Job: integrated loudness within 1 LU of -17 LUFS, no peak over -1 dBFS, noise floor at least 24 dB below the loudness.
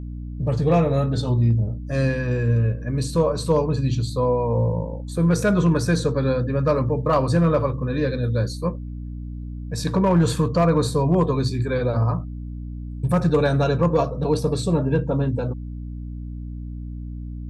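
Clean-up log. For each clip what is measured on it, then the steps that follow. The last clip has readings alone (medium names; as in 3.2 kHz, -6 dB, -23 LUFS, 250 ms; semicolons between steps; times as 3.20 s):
clipped samples 0.2%; clipping level -10.5 dBFS; hum 60 Hz; highest harmonic 300 Hz; hum level -29 dBFS; loudness -21.5 LUFS; peak level -10.5 dBFS; loudness target -17.0 LUFS
-> clip repair -10.5 dBFS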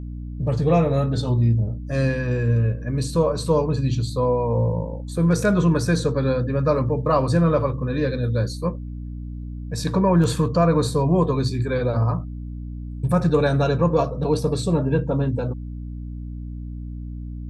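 clipped samples 0.0%; hum 60 Hz; highest harmonic 300 Hz; hum level -29 dBFS
-> de-hum 60 Hz, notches 5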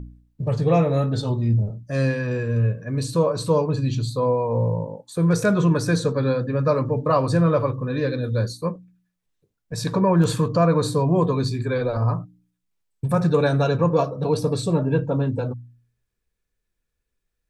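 hum not found; loudness -22.0 LUFS; peak level -6.5 dBFS; loudness target -17.0 LUFS
-> trim +5 dB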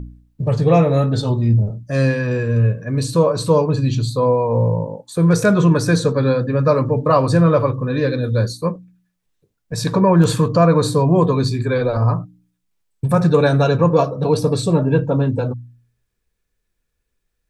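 loudness -17.0 LUFS; peak level -1.5 dBFS; noise floor -73 dBFS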